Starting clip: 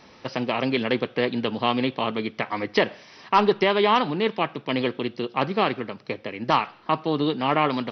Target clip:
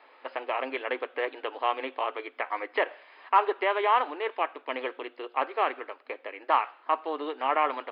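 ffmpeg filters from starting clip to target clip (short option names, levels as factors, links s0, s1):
-filter_complex "[0:a]afftfilt=real='re*between(b*sr/4096,250,5100)':imag='im*between(b*sr/4096,250,5100)':win_size=4096:overlap=0.75,acrossover=split=3500[s0][s1];[s1]acompressor=threshold=0.00282:ratio=4:attack=1:release=60[s2];[s0][s2]amix=inputs=2:normalize=0,acrossover=split=480 2900:gain=0.112 1 0.0708[s3][s4][s5];[s3][s4][s5]amix=inputs=3:normalize=0,volume=0.841"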